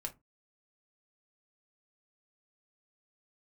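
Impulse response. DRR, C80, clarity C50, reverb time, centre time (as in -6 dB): 3.0 dB, 29.0 dB, 17.5 dB, 0.20 s, 7 ms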